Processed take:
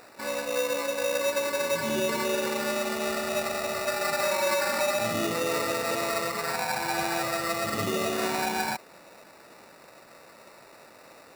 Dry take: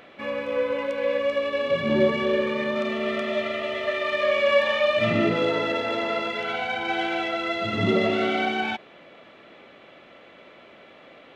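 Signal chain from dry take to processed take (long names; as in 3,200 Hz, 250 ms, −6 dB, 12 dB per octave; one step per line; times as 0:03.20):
brickwall limiter −16.5 dBFS, peak gain reduction 8.5 dB
sample-rate reduction 3,200 Hz, jitter 0%
low-shelf EQ 420 Hz −7 dB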